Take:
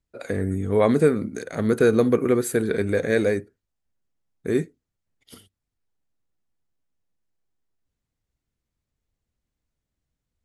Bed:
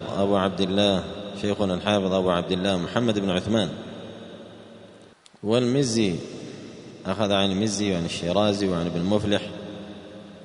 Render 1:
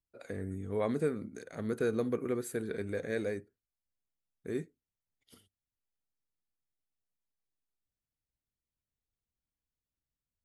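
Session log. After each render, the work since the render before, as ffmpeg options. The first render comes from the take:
ffmpeg -i in.wav -af "volume=-13.5dB" out.wav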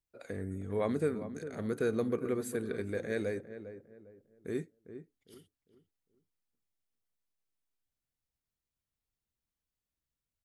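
ffmpeg -i in.wav -filter_complex "[0:a]asplit=2[link_01][link_02];[link_02]adelay=403,lowpass=frequency=1200:poles=1,volume=-11dB,asplit=2[link_03][link_04];[link_04]adelay=403,lowpass=frequency=1200:poles=1,volume=0.34,asplit=2[link_05][link_06];[link_06]adelay=403,lowpass=frequency=1200:poles=1,volume=0.34,asplit=2[link_07][link_08];[link_08]adelay=403,lowpass=frequency=1200:poles=1,volume=0.34[link_09];[link_01][link_03][link_05][link_07][link_09]amix=inputs=5:normalize=0" out.wav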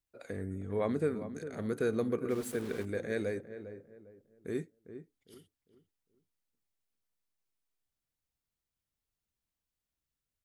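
ffmpeg -i in.wav -filter_complex "[0:a]asettb=1/sr,asplit=3[link_01][link_02][link_03];[link_01]atrim=end=0.464[link_04];[link_02]atrim=start=0.46:end=1.11,asetpts=PTS-STARTPTS,afade=type=in:duration=0.004:curve=qsin,afade=type=out:start_time=0.646:duration=0.004:curve=qsin,highshelf=frequency=4900:gain=-5.5[link_05];[link_03]atrim=start=1.106[link_06];[link_04][link_05]acrossfade=duration=0.004:curve1=hsin:curve2=qsin[link_07];[link_07][link_06]acrossfade=duration=0.004:curve1=qsin:curve2=hsin,asplit=3[link_08][link_09][link_10];[link_08]afade=type=out:start_time=2.29:duration=0.02[link_11];[link_09]aeval=exprs='val(0)*gte(abs(val(0)),0.00668)':channel_layout=same,afade=type=in:start_time=2.29:duration=0.02,afade=type=out:start_time=2.84:duration=0.02[link_12];[link_10]afade=type=in:start_time=2.84:duration=0.02[link_13];[link_11][link_12][link_13]amix=inputs=3:normalize=0,asettb=1/sr,asplit=3[link_14][link_15][link_16];[link_14]atrim=end=3.484[link_17];[link_15]atrim=start=3.48:end=3.97,asetpts=PTS-STARTPTS,afade=type=in:duration=0.004:curve=qsin,afade=type=out:start_time=0.486:duration=0.004:curve=qsin,asplit=2[link_18][link_19];[link_19]adelay=38,volume=-9.5dB[link_20];[link_18][link_20]amix=inputs=2:normalize=0,atrim=end_sample=21609[link_21];[link_16]atrim=start=3.966[link_22];[link_17][link_21]acrossfade=duration=0.004:curve1=hsin:curve2=qsin[link_23];[link_23][link_22]acrossfade=duration=0.004:curve1=qsin:curve2=hsin" out.wav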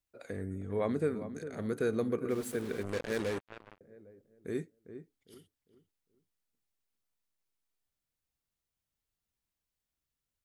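ffmpeg -i in.wav -filter_complex "[0:a]asettb=1/sr,asplit=3[link_01][link_02][link_03];[link_01]atrim=end=2.834[link_04];[link_02]atrim=start=2.83:end=3.81,asetpts=PTS-STARTPTS,afade=type=in:duration=0.004:curve=qsin,afade=type=out:start_time=0.976:duration=0.004:curve=qsin,acrusher=bits=5:mix=0:aa=0.5[link_05];[link_03]atrim=start=3.806[link_06];[link_04][link_05]acrossfade=duration=0.004:curve1=hsin:curve2=qsin[link_07];[link_07][link_06]acrossfade=duration=0.004:curve1=qsin:curve2=hsin" out.wav

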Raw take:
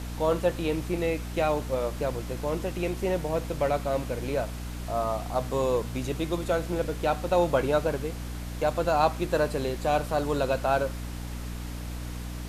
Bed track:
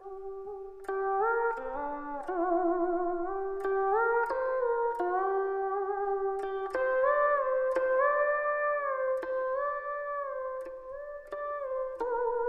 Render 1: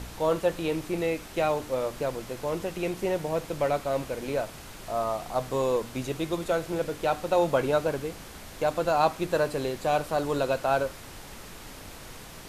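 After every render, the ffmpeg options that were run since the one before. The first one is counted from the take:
ffmpeg -i in.wav -af "bandreject=frequency=60:width_type=h:width=4,bandreject=frequency=120:width_type=h:width=4,bandreject=frequency=180:width_type=h:width=4,bandreject=frequency=240:width_type=h:width=4,bandreject=frequency=300:width_type=h:width=4" out.wav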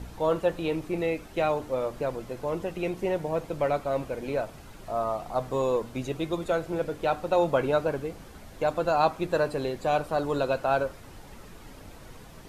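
ffmpeg -i in.wav -af "afftdn=noise_reduction=9:noise_floor=-44" out.wav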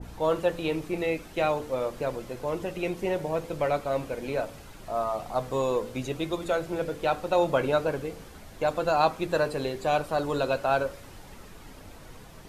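ffmpeg -i in.wav -af "bandreject=frequency=56.18:width_type=h:width=4,bandreject=frequency=112.36:width_type=h:width=4,bandreject=frequency=168.54:width_type=h:width=4,bandreject=frequency=224.72:width_type=h:width=4,bandreject=frequency=280.9:width_type=h:width=4,bandreject=frequency=337.08:width_type=h:width=4,bandreject=frequency=393.26:width_type=h:width=4,bandreject=frequency=449.44:width_type=h:width=4,bandreject=frequency=505.62:width_type=h:width=4,bandreject=frequency=561.8:width_type=h:width=4,adynamicequalizer=threshold=0.01:dfrequency=1700:dqfactor=0.7:tfrequency=1700:tqfactor=0.7:attack=5:release=100:ratio=0.375:range=1.5:mode=boostabove:tftype=highshelf" out.wav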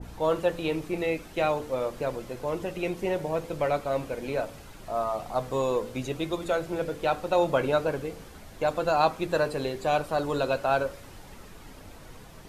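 ffmpeg -i in.wav -af anull out.wav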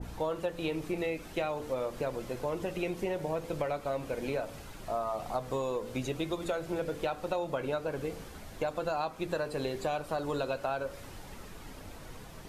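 ffmpeg -i in.wav -af "acompressor=threshold=-29dB:ratio=10" out.wav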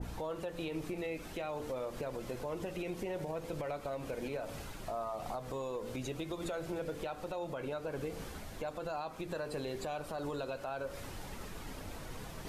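ffmpeg -i in.wav -af "areverse,acompressor=mode=upward:threshold=-39dB:ratio=2.5,areverse,alimiter=level_in=6dB:limit=-24dB:level=0:latency=1:release=117,volume=-6dB" out.wav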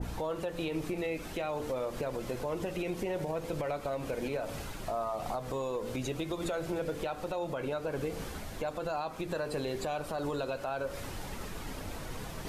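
ffmpeg -i in.wav -af "volume=4.5dB" out.wav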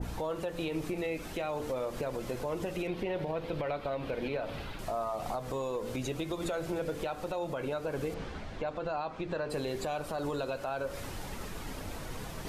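ffmpeg -i in.wav -filter_complex "[0:a]asettb=1/sr,asplit=3[link_01][link_02][link_03];[link_01]atrim=end=2.874[link_04];[link_02]atrim=start=2.87:end=4.79,asetpts=PTS-STARTPTS,afade=type=in:duration=0.004:curve=qsin,afade=type=out:start_time=1.916:duration=0.004:curve=qsin,highshelf=frequency=5100:width_type=q:width=1.5:gain=-11[link_05];[link_03]atrim=start=4.786[link_06];[link_04][link_05]acrossfade=duration=0.004:curve1=hsin:curve2=qsin[link_07];[link_07][link_06]acrossfade=duration=0.004:curve1=qsin:curve2=hsin,asettb=1/sr,asplit=3[link_08][link_09][link_10];[link_08]atrim=end=8.144[link_11];[link_09]atrim=start=8.14:end=9.5,asetpts=PTS-STARTPTS,afade=type=in:duration=0.004:curve=qsin,afade=type=out:start_time=1.356:duration=0.004:curve=qsin,lowpass=3900[link_12];[link_10]atrim=start=9.496[link_13];[link_11][link_12]acrossfade=duration=0.004:curve1=hsin:curve2=qsin[link_14];[link_14][link_13]acrossfade=duration=0.004:curve1=qsin:curve2=hsin" out.wav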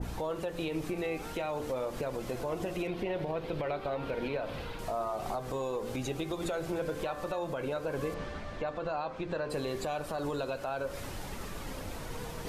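ffmpeg -i in.wav -i bed.wav -filter_complex "[1:a]volume=-18.5dB[link_01];[0:a][link_01]amix=inputs=2:normalize=0" out.wav

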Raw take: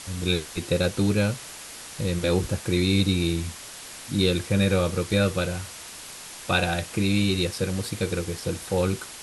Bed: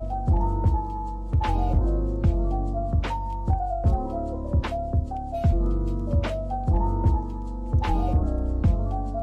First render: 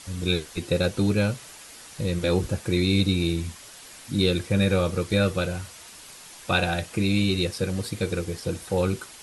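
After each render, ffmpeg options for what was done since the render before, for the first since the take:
ffmpeg -i in.wav -af "afftdn=noise_reduction=6:noise_floor=-41" out.wav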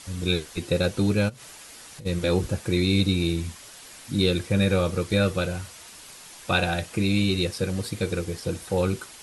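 ffmpeg -i in.wav -filter_complex "[0:a]asplit=3[link_01][link_02][link_03];[link_01]afade=type=out:start_time=1.28:duration=0.02[link_04];[link_02]acompressor=threshold=-38dB:ratio=12:attack=3.2:release=140:knee=1:detection=peak,afade=type=in:start_time=1.28:duration=0.02,afade=type=out:start_time=2.05:duration=0.02[link_05];[link_03]afade=type=in:start_time=2.05:duration=0.02[link_06];[link_04][link_05][link_06]amix=inputs=3:normalize=0" out.wav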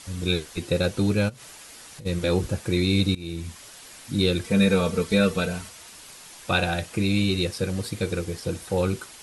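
ffmpeg -i in.wav -filter_complex "[0:a]asettb=1/sr,asplit=3[link_01][link_02][link_03];[link_01]atrim=end=4.444[link_04];[link_02]atrim=start=4.44:end=5.69,asetpts=PTS-STARTPTS,afade=type=in:duration=0.004:curve=qsin,afade=type=out:start_time=1.246:duration=0.004:curve=qsin,aecho=1:1:4.5:0.79,atrim=end_sample=55125[link_05];[link_03]atrim=start=5.686[link_06];[link_04][link_05]acrossfade=duration=0.004:curve1=hsin:curve2=qsin[link_07];[link_07][link_06]acrossfade=duration=0.004:curve1=qsin:curve2=hsin,asplit=2[link_08][link_09];[link_08]atrim=end=3.15,asetpts=PTS-STARTPTS,afade=type=out:start_time=3.146:duration=0.004:curve=hsin:silence=0.1[link_10];[link_09]atrim=start=3.15,asetpts=PTS-STARTPTS,afade=type=in:duration=0.44:silence=0.1[link_11];[link_10][link_11]concat=n=2:v=0:a=1" out.wav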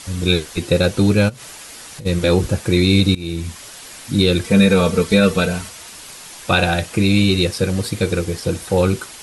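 ffmpeg -i in.wav -af "volume=8dB,alimiter=limit=-3dB:level=0:latency=1" out.wav

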